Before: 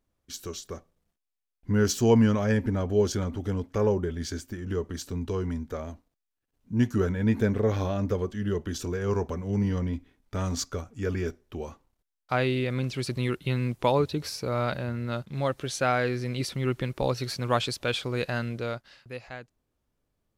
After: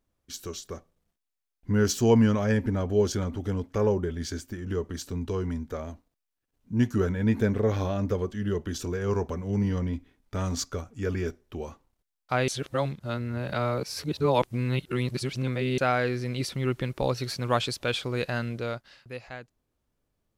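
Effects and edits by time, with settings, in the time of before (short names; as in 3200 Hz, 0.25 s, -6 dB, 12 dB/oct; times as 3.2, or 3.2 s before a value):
12.48–15.78 reverse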